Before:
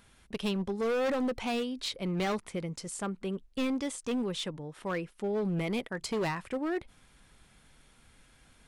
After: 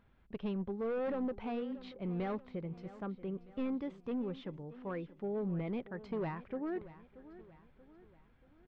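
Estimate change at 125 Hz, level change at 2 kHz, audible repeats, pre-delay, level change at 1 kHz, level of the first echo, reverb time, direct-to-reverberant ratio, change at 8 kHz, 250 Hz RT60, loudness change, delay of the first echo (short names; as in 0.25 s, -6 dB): -4.5 dB, -12.0 dB, 3, none, -7.5 dB, -16.5 dB, none, none, under -35 dB, none, -6.0 dB, 0.632 s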